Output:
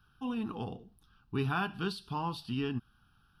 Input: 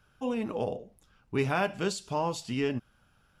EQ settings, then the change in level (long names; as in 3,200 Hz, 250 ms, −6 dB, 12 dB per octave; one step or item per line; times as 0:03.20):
notch filter 950 Hz, Q 18
dynamic equaliser 6,200 Hz, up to −7 dB, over −58 dBFS, Q 2.1
phaser with its sweep stopped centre 2,100 Hz, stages 6
0.0 dB